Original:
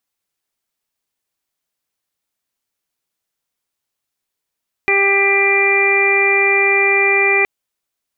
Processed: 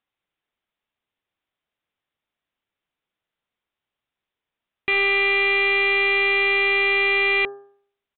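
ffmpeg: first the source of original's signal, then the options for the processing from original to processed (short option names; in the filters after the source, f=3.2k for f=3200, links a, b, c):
-f lavfi -i "aevalsrc='0.133*sin(2*PI*396*t)+0.075*sin(2*PI*792*t)+0.0501*sin(2*PI*1188*t)+0.0237*sin(2*PI*1584*t)+0.15*sin(2*PI*1980*t)+0.2*sin(2*PI*2376*t)':d=2.57:s=44100"
-af "bandreject=f=133.7:t=h:w=4,bandreject=f=267.4:t=h:w=4,bandreject=f=401.1:t=h:w=4,bandreject=f=534.8:t=h:w=4,bandreject=f=668.5:t=h:w=4,bandreject=f=802.2:t=h:w=4,bandreject=f=935.9:t=h:w=4,bandreject=f=1.0696k:t=h:w=4,bandreject=f=1.2033k:t=h:w=4,bandreject=f=1.337k:t=h:w=4,bandreject=f=1.4707k:t=h:w=4,bandreject=f=1.6044k:t=h:w=4,bandreject=f=1.7381k:t=h:w=4,aresample=8000,asoftclip=type=tanh:threshold=-16dB,aresample=44100"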